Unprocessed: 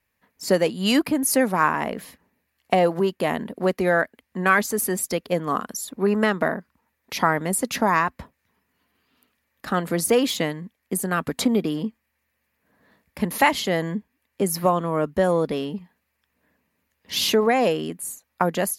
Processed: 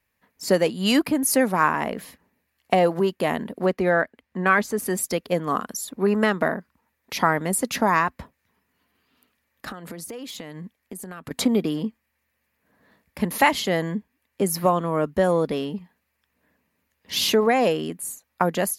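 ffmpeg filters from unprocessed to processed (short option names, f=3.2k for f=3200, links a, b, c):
-filter_complex "[0:a]asettb=1/sr,asplit=3[a][b][c];[a]atrim=end=3.664[d];[b]atrim=start=3.66:end=4.86,asetpts=PTS-STARTPTS,afade=t=in:d=0.004:c=qsin,afade=t=out:st=1.196:d=0.004:c=qsin,highshelf=f=5.4k:g=-11[e];[c]atrim=start=4.856[f];[d][e]acrossfade=d=0.004:c1=hsin:c2=qsin[g];[g][f]acrossfade=d=0.004:c1=qsin:c2=hsin,asettb=1/sr,asplit=3[h][i][j];[h]atrim=end=9.704[k];[i]atrim=start=9.7:end=11.31,asetpts=PTS-STARTPTS,afade=t=in:d=0.004:c=qsin,afade=t=out:st=1.606:d=0.004:c=qsin,acompressor=threshold=-32dB:ratio=16:attack=3.2:release=140:knee=1:detection=peak[l];[j]atrim=start=11.306[m];[k][l]acrossfade=d=0.004:c1=hsin:c2=qsin[n];[n][m]acrossfade=d=0.004:c1=qsin:c2=hsin"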